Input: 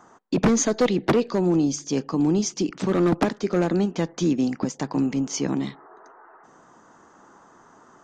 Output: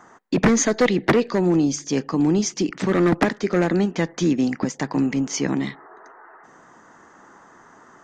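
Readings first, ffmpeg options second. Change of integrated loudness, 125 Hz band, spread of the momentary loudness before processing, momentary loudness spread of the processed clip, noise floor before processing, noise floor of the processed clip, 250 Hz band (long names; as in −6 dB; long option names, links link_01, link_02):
+2.5 dB, +2.0 dB, 6 LU, 6 LU, −54 dBFS, −51 dBFS, +2.0 dB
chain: -af "equalizer=frequency=1900:width=2.5:gain=8,volume=2dB"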